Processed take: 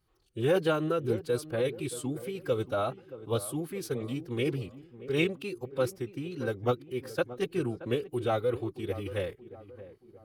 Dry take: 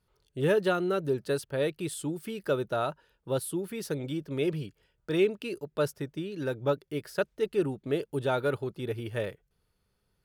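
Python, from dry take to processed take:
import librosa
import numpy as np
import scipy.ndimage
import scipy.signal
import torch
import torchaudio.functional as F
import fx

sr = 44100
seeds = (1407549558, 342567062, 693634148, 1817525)

y = fx.echo_filtered(x, sr, ms=626, feedback_pct=47, hz=1500.0, wet_db=-15.0)
y = fx.pitch_keep_formants(y, sr, semitones=-2.5)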